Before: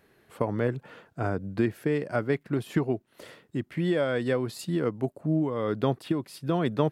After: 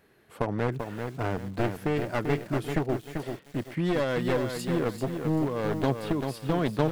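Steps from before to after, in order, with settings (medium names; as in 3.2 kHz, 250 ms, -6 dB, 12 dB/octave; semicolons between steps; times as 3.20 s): one-sided wavefolder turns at -24.5 dBFS; bit-crushed delay 390 ms, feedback 35%, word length 8-bit, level -6 dB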